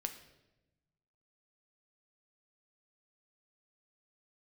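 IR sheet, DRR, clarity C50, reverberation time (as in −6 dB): 6.0 dB, 10.5 dB, 1.0 s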